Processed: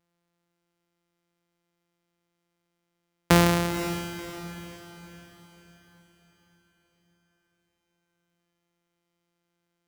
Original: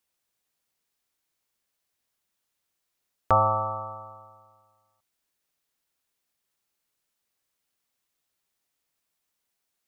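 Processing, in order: sample sorter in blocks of 256 samples; diffused feedback echo 0.508 s, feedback 45%, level -10.5 dB; gain +2 dB

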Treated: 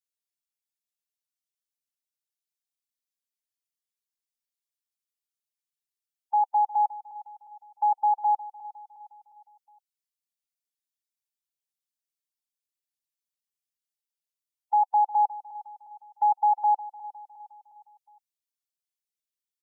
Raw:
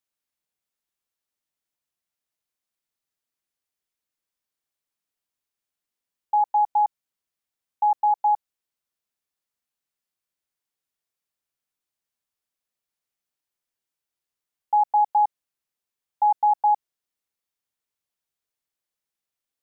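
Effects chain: per-bin expansion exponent 1.5; dynamic EQ 800 Hz, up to +4 dB, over -29 dBFS, Q 2.4; in parallel at +1 dB: limiter -22 dBFS, peak gain reduction 11.5 dB; on the sum: feedback echo 0.359 s, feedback 47%, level -17 dB; gain -8 dB

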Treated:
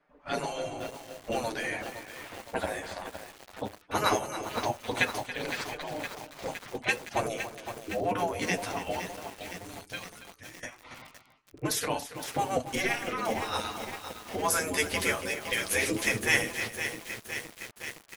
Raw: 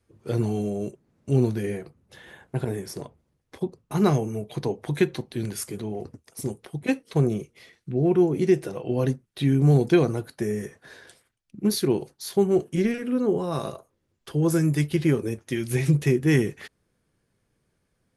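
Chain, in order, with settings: spectral gate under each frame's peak -15 dB weak; low-pass opened by the level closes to 1700 Hz, open at -33.5 dBFS; 8.99–10.63 passive tone stack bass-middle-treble 6-0-2; in parallel at 0 dB: compressor 16:1, threshold -44 dBFS, peak gain reduction 19 dB; on the sum: flange 0.17 Hz, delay 6.5 ms, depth 4.8 ms, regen +11%; on a send: echo 0.28 s -13 dB; on the sum: lo-fi delay 0.513 s, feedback 80%, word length 8-bit, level -8.5 dB; gain +8.5 dB

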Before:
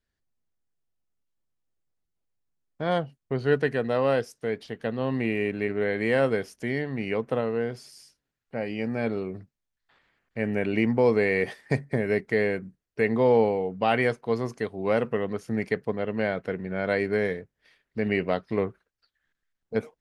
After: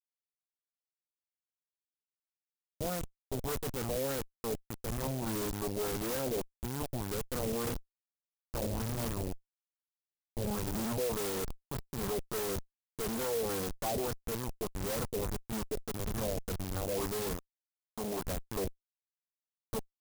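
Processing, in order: 7.64–8.81 flutter echo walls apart 4.8 m, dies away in 0.5 s; whine 2500 Hz -49 dBFS; Schmitt trigger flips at -29 dBFS; LFO low-pass sine 1.7 Hz 540–6600 Hz; limiter -28 dBFS, peak gain reduction 11 dB; 17.37–18.25 low shelf 160 Hz -8.5 dB; clock jitter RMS 0.12 ms

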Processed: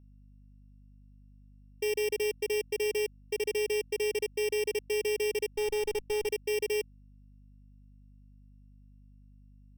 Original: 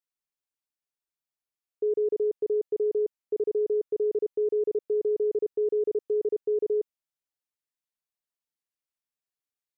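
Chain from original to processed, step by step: sample sorter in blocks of 16 samples; hum 50 Hz, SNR 22 dB; 5.55–6.27 running maximum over 9 samples; gain -4 dB

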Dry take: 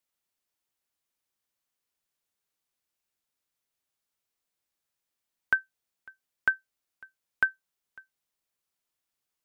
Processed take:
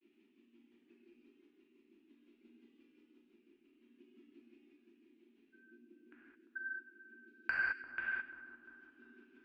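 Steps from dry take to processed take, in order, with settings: reverb removal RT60 1.2 s; band noise 230–370 Hz -73 dBFS; grains, grains 5.8/s, pitch spread up and down by 0 st; tremolo 11 Hz, depth 59%; soft clip -37.5 dBFS, distortion -9 dB; synth low-pass 2600 Hz, resonance Q 5.2; split-band echo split 1500 Hz, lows 0.346 s, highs 99 ms, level -13.5 dB; non-linear reverb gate 0.24 s flat, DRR -6.5 dB; gain +9.5 dB

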